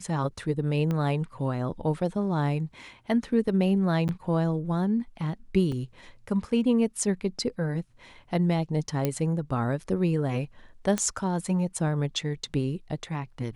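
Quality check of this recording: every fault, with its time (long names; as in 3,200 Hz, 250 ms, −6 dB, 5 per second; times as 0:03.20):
0:00.91: click −18 dBFS
0:04.08–0:04.09: drop-out 9.2 ms
0:05.72: drop-out 2.3 ms
0:09.05: click −12 dBFS
0:10.98: click −13 dBFS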